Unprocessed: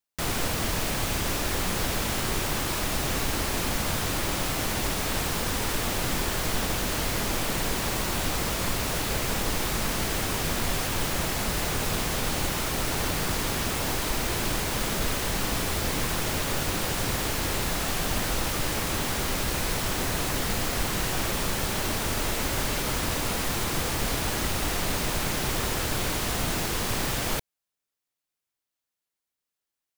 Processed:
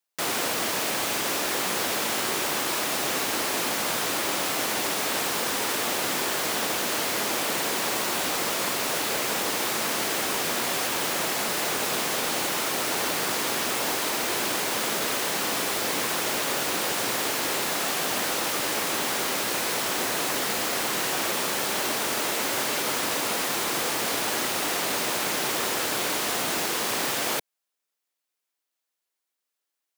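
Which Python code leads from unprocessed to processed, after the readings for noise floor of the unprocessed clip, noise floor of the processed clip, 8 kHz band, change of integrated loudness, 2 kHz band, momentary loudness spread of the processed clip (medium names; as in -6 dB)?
under -85 dBFS, -84 dBFS, +3.0 dB, +2.0 dB, +3.0 dB, 0 LU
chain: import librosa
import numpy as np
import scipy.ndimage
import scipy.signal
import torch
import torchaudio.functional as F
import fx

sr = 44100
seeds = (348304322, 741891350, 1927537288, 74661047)

y = scipy.signal.sosfilt(scipy.signal.butter(2, 310.0, 'highpass', fs=sr, output='sos'), x)
y = F.gain(torch.from_numpy(y), 3.0).numpy()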